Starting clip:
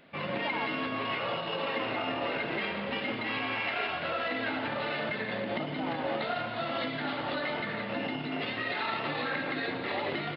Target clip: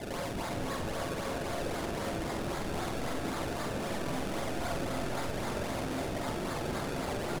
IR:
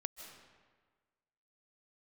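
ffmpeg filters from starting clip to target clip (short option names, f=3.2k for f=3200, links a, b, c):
-filter_complex "[0:a]highshelf=f=3.4k:g=3.5,asplit=2[a][b];[b]highpass=f=720:p=1,volume=29dB,asoftclip=type=tanh:threshold=-18dB[c];[a][c]amix=inputs=2:normalize=0,lowpass=f=1.4k:p=1,volume=-6dB,alimiter=level_in=0.5dB:limit=-24dB:level=0:latency=1:release=17,volume=-0.5dB,atempo=1.4,acrossover=split=180[d][e];[e]acompressor=threshold=-37dB:ratio=10[f];[d][f]amix=inputs=2:normalize=0,acrusher=samples=30:mix=1:aa=0.000001:lfo=1:lforange=30:lforate=3.8,asplit=2[g][h];[h]adelay=46,volume=-5.5dB[i];[g][i]amix=inputs=2:normalize=0[j];[1:a]atrim=start_sample=2205,asetrate=23373,aresample=44100[k];[j][k]afir=irnorm=-1:irlink=0,volume=1dB"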